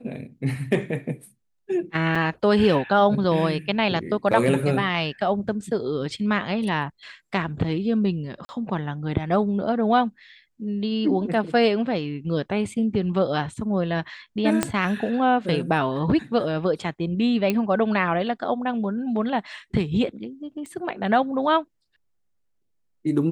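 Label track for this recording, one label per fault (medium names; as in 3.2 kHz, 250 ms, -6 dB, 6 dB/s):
2.150000	2.150000	dropout 4.7 ms
8.450000	8.490000	dropout 40 ms
14.630000	14.630000	pop -6 dBFS
17.500000	17.500000	pop -10 dBFS
20.660000	20.660000	pop -28 dBFS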